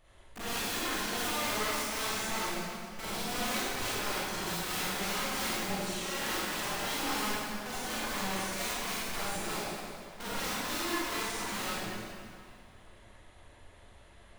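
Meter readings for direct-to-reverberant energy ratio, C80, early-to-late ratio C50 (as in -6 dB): -10.5 dB, -3.5 dB, -7.0 dB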